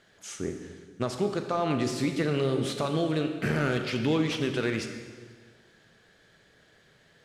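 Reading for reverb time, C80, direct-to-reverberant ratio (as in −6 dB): 1.7 s, 8.5 dB, 5.5 dB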